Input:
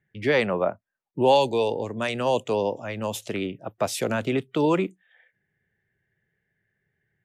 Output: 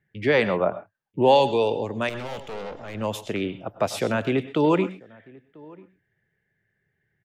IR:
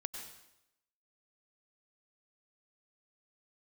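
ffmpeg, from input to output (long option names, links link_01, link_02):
-filter_complex "[0:a]asettb=1/sr,asplit=3[link_01][link_02][link_03];[link_01]atrim=end=2.094[link_04];[link_02]atrim=start=2.09:end=2.95,asetpts=PTS-STARTPTS,afade=type=in:duration=0.004:curve=qsin,afade=type=out:start_time=0.856:duration=0.004:curve=qsin,aeval=exprs='(tanh(50.1*val(0)+0.65)-tanh(0.65))/50.1':channel_layout=same[link_05];[link_03]atrim=start=2.946[link_06];[link_04][link_05]acrossfade=duration=0.004:curve1=hsin:curve2=qsin[link_07];[link_07][link_06]acrossfade=duration=0.004:curve1=qsin:curve2=hsin,asplit=2[link_08][link_09];[link_09]adelay=991.3,volume=-24dB,highshelf=frequency=4000:gain=-22.3[link_10];[link_08][link_10]amix=inputs=2:normalize=0,asplit=2[link_11][link_12];[1:a]atrim=start_sample=2205,atrim=end_sample=6174,lowpass=5400[link_13];[link_12][link_13]afir=irnorm=-1:irlink=0,volume=1.5dB[link_14];[link_11][link_14]amix=inputs=2:normalize=0,volume=-4dB"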